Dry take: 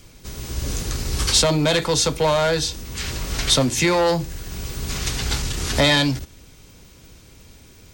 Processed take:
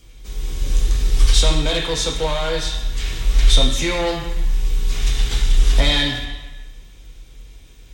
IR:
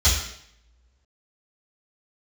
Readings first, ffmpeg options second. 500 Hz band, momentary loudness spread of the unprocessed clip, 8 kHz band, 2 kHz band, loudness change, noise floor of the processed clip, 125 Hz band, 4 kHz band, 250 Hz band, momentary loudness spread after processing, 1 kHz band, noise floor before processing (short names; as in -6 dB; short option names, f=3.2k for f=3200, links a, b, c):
-4.0 dB, 14 LU, -4.0 dB, -2.0 dB, +0.5 dB, -43 dBFS, +2.0 dB, +0.5 dB, -4.0 dB, 11 LU, -4.0 dB, -48 dBFS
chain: -filter_complex "[0:a]asplit=2[a][b];[1:a]atrim=start_sample=2205,asetrate=23814,aresample=44100,highshelf=f=2.5k:g=6.5[c];[b][c]afir=irnorm=-1:irlink=0,volume=-23.5dB[d];[a][d]amix=inputs=2:normalize=0,volume=-6.5dB"